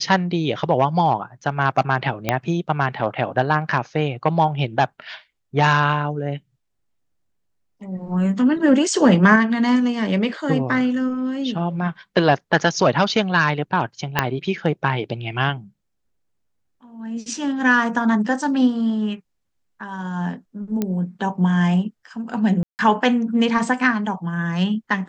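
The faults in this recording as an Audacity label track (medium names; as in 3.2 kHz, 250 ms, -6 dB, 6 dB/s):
2.290000	2.290000	pop -4 dBFS
14.190000	14.190000	pop -2 dBFS
20.820000	20.820000	pop -10 dBFS
22.630000	22.790000	dropout 159 ms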